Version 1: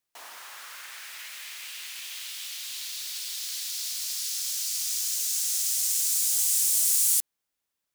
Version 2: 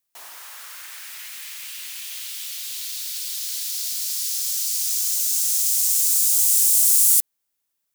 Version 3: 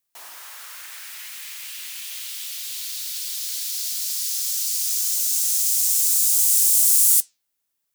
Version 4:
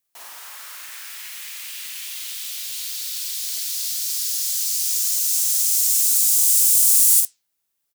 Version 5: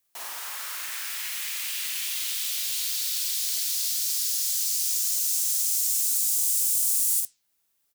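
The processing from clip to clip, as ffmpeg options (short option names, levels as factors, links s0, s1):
-af "crystalizer=i=1:c=0"
-af "flanger=delay=7.1:depth=4.7:regen=82:speed=1.4:shape=sinusoidal,volume=1.68"
-filter_complex "[0:a]asplit=2[s0][s1];[s1]adelay=48,volume=0.631[s2];[s0][s2]amix=inputs=2:normalize=0"
-filter_complex "[0:a]acrossover=split=240[s0][s1];[s1]acompressor=threshold=0.0398:ratio=3[s2];[s0][s2]amix=inputs=2:normalize=0,volume=1.41"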